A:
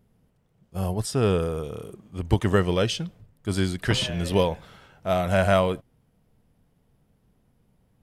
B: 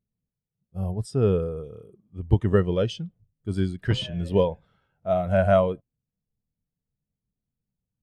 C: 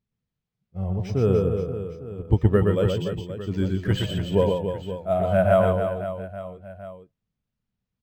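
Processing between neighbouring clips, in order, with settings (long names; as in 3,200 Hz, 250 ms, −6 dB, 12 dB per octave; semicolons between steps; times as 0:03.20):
every bin expanded away from the loudest bin 1.5 to 1
reverse bouncing-ball delay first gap 120 ms, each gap 1.4×, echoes 5; linearly interpolated sample-rate reduction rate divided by 4×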